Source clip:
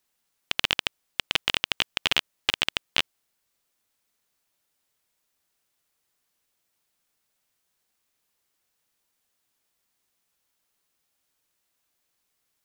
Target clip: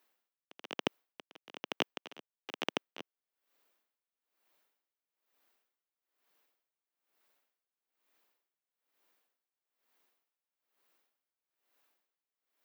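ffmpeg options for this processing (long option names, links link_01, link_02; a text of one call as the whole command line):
ffmpeg -i in.wav -filter_complex "[0:a]aeval=exprs='if(lt(val(0),0),0.251*val(0),val(0))':channel_layout=same,acrossover=split=270|1100[link_01][link_02][link_03];[link_01]acrusher=bits=2:mix=0:aa=0.5[link_04];[link_04][link_02][link_03]amix=inputs=3:normalize=0,equalizer=frequency=8200:width_type=o:width=2:gain=-12,areverse,acompressor=threshold=-39dB:ratio=10,areverse,lowshelf=frequency=220:gain=8,aeval=exprs='val(0)*pow(10,-23*(0.5-0.5*cos(2*PI*1.1*n/s))/20)':channel_layout=same,volume=9.5dB" out.wav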